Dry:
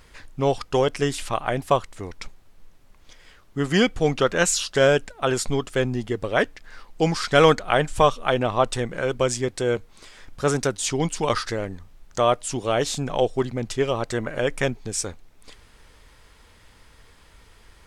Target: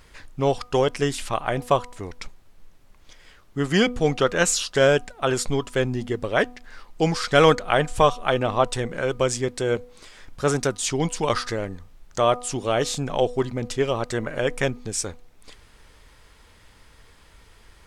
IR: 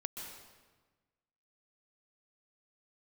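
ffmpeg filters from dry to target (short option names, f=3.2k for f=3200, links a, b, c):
-af "bandreject=f=245.8:t=h:w=4,bandreject=f=491.6:t=h:w=4,bandreject=f=737.4:t=h:w=4,bandreject=f=983.2:t=h:w=4,bandreject=f=1.229k:t=h:w=4"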